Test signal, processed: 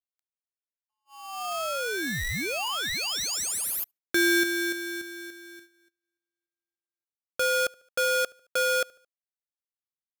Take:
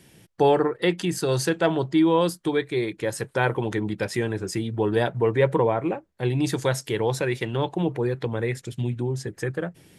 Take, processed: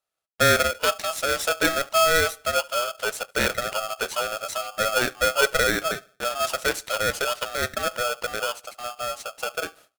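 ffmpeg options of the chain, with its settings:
ffmpeg -i in.wav -filter_complex "[0:a]highpass=frequency=240:width=0.5412,highpass=frequency=240:width=1.3066,agate=range=-30dB:threshold=-50dB:ratio=16:detection=peak,asplit=2[link_01][link_02];[link_02]adelay=73,lowpass=frequency=1500:poles=1,volume=-23.5dB,asplit=2[link_03][link_04];[link_04]adelay=73,lowpass=frequency=1500:poles=1,volume=0.43,asplit=2[link_05][link_06];[link_06]adelay=73,lowpass=frequency=1500:poles=1,volume=0.43[link_07];[link_03][link_05][link_07]amix=inputs=3:normalize=0[link_08];[link_01][link_08]amix=inputs=2:normalize=0,aeval=exprs='val(0)*sgn(sin(2*PI*970*n/s))':channel_layout=same" out.wav

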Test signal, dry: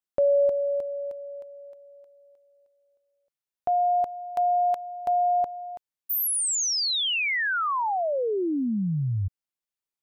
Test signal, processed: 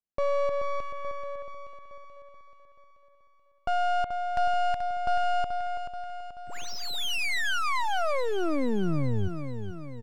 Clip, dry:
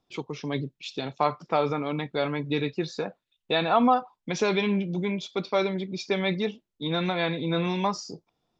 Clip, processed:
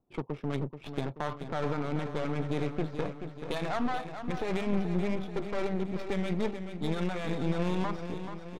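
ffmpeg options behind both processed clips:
ffmpeg -i in.wav -af "alimiter=limit=-20dB:level=0:latency=1:release=47,aresample=16000,aeval=exprs='clip(val(0),-1,0.00944)':channel_layout=same,aresample=44100,adynamicsmooth=sensitivity=5:basefreq=830,aecho=1:1:432|864|1296|1728|2160|2592|3024:0.355|0.199|0.111|0.0623|0.0349|0.0195|0.0109,volume=1.5dB" out.wav

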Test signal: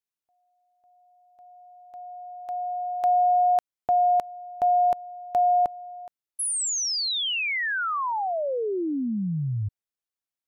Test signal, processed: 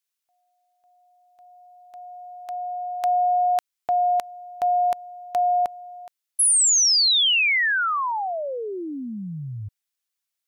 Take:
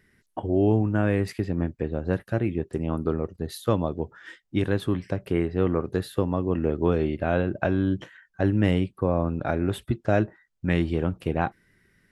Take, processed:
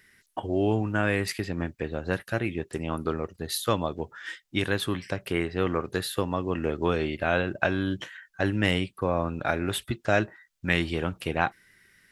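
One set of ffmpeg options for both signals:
ffmpeg -i in.wav -af "tiltshelf=frequency=970:gain=-7.5,volume=2dB" out.wav

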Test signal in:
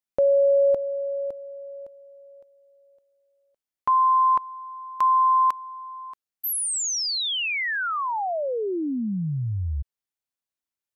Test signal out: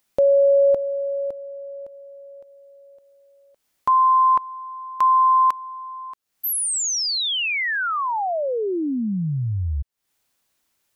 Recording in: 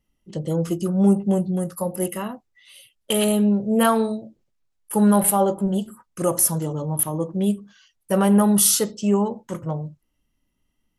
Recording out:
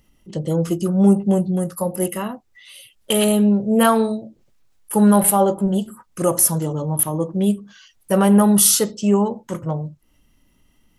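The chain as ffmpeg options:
ffmpeg -i in.wav -af "acompressor=mode=upward:threshold=-35dB:ratio=1.5:attack=2.6:release=165:knee=2.83:detection=peak,volume=3dB" out.wav

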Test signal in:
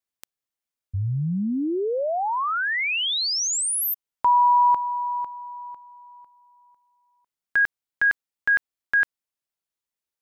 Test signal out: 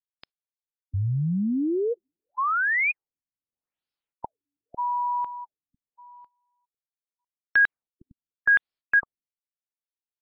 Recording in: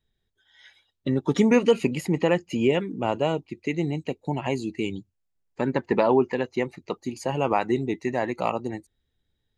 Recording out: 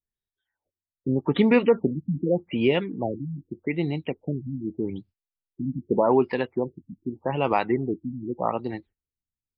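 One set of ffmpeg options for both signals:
ffmpeg -i in.wav -af "agate=range=-19dB:threshold=-45dB:ratio=3:release=137:detection=rms,equalizer=frequency=4600:width_type=o:width=2.2:gain=3.5,afftfilt=real='re*lt(b*sr/1024,280*pow(5500/280,0.5+0.5*sin(2*PI*0.83*pts/sr)))':imag='im*lt(b*sr/1024,280*pow(5500/280,0.5+0.5*sin(2*PI*0.83*pts/sr)))':win_size=1024:overlap=0.75" out.wav

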